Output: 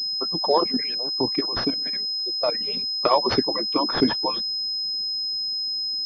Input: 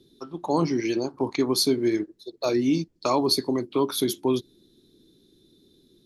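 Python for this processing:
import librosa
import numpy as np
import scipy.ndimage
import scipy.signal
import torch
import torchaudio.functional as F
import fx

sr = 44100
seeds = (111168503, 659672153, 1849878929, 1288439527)

y = fx.hpss_only(x, sr, part='percussive')
y = fx.level_steps(y, sr, step_db=14, at=(0.58, 2.61))
y = fx.pwm(y, sr, carrier_hz=5100.0)
y = y * librosa.db_to_amplitude(7.0)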